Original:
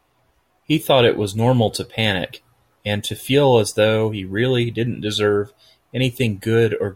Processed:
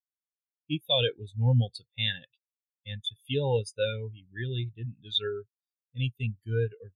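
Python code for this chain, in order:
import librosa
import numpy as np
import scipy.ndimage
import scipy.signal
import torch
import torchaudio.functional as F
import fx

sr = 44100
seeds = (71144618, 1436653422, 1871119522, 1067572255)

y = fx.tone_stack(x, sr, knobs='5-5-5')
y = fx.spectral_expand(y, sr, expansion=2.5)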